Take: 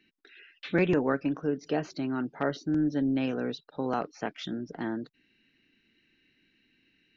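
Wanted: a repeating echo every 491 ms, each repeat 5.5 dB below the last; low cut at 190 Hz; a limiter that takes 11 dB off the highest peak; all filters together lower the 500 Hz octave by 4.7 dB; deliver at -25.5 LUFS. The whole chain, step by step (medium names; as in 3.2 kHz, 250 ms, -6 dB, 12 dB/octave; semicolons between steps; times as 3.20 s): high-pass 190 Hz; peaking EQ 500 Hz -6 dB; peak limiter -26.5 dBFS; feedback delay 491 ms, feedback 53%, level -5.5 dB; trim +10.5 dB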